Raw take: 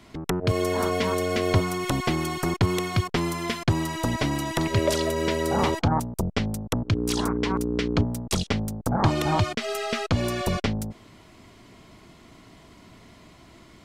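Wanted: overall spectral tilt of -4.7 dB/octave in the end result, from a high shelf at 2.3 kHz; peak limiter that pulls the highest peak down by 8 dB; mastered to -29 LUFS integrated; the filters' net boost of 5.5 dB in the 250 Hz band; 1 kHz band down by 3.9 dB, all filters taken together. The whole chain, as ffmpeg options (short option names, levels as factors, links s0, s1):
-af "equalizer=f=250:t=o:g=7.5,equalizer=f=1000:t=o:g=-7,highshelf=f=2300:g=8.5,volume=0.596,alimiter=limit=0.126:level=0:latency=1"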